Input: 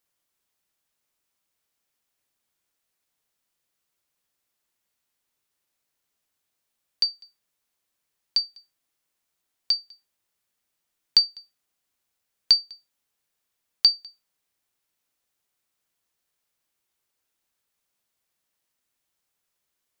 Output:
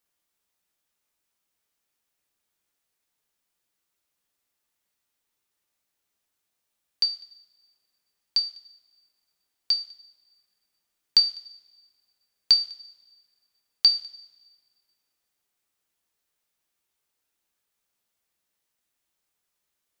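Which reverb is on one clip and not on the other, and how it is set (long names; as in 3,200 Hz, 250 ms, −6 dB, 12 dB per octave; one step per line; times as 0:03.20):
coupled-rooms reverb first 0.45 s, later 1.6 s, from −17 dB, DRR 6 dB
level −1.5 dB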